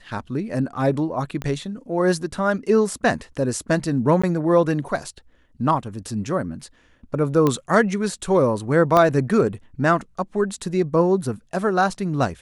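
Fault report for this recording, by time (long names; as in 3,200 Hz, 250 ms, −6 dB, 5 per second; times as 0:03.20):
0:01.42: click −15 dBFS
0:04.22–0:04.24: drop-out 15 ms
0:07.47: click −8 dBFS
0:08.97: click −6 dBFS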